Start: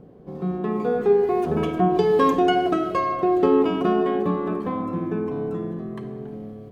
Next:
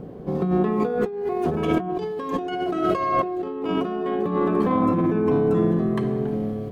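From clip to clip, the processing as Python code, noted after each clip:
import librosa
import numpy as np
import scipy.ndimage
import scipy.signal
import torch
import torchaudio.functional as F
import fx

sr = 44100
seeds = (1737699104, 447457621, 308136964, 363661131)

y = fx.over_compress(x, sr, threshold_db=-28.0, ratio=-1.0)
y = F.gain(torch.from_numpy(y), 4.5).numpy()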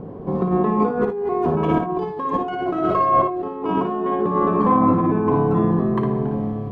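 y = fx.lowpass(x, sr, hz=1500.0, slope=6)
y = fx.peak_eq(y, sr, hz=1000.0, db=9.5, octaves=0.42)
y = fx.room_early_taps(y, sr, ms=(57, 77), db=(-6.5, -16.0))
y = F.gain(torch.from_numpy(y), 2.5).numpy()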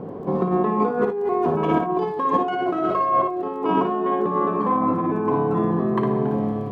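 y = fx.highpass(x, sr, hz=230.0, slope=6)
y = fx.rider(y, sr, range_db=4, speed_s=0.5)
y = fx.dmg_crackle(y, sr, seeds[0], per_s=21.0, level_db=-45.0)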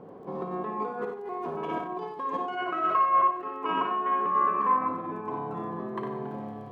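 y = fx.spec_box(x, sr, start_s=2.57, length_s=2.31, low_hz=980.0, high_hz=3000.0, gain_db=9)
y = fx.low_shelf(y, sr, hz=400.0, db=-9.0)
y = y + 10.0 ** (-9.0 / 20.0) * np.pad(y, (int(92 * sr / 1000.0), 0))[:len(y)]
y = F.gain(torch.from_numpy(y), -8.5).numpy()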